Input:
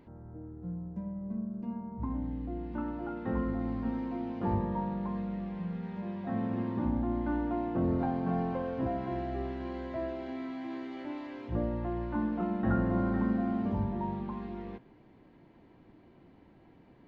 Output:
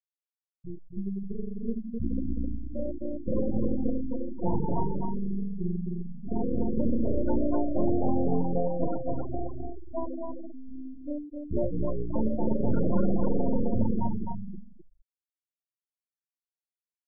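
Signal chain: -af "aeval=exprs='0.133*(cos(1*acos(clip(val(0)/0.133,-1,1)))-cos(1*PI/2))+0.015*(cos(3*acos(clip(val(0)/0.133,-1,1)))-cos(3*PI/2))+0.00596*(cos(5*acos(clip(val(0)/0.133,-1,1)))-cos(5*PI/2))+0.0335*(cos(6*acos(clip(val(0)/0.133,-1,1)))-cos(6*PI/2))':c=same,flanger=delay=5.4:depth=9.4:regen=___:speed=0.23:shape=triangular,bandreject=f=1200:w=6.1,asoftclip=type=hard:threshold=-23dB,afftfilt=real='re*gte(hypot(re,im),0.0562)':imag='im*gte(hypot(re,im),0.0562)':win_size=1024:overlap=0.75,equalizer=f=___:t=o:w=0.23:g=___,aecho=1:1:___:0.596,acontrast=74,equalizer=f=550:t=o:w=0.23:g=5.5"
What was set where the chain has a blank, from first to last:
31, 1800, -4, 259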